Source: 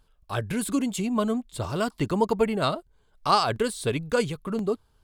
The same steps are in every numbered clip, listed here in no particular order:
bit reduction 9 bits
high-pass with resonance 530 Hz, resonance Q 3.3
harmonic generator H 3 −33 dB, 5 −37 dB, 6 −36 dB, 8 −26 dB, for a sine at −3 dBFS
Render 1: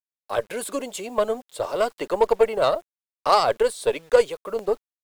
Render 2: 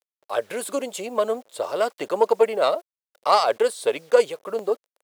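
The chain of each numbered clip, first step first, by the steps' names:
high-pass with resonance, then harmonic generator, then bit reduction
harmonic generator, then bit reduction, then high-pass with resonance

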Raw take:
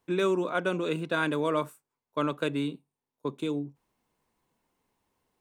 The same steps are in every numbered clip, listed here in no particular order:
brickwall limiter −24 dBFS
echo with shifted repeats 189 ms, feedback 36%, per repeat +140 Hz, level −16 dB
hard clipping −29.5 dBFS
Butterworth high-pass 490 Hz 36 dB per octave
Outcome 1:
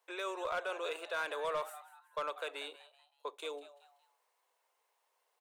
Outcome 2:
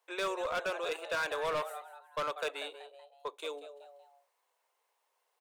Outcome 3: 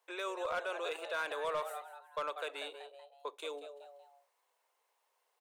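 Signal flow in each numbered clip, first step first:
brickwall limiter, then Butterworth high-pass, then echo with shifted repeats, then hard clipping
echo with shifted repeats, then Butterworth high-pass, then hard clipping, then brickwall limiter
echo with shifted repeats, then brickwall limiter, then Butterworth high-pass, then hard clipping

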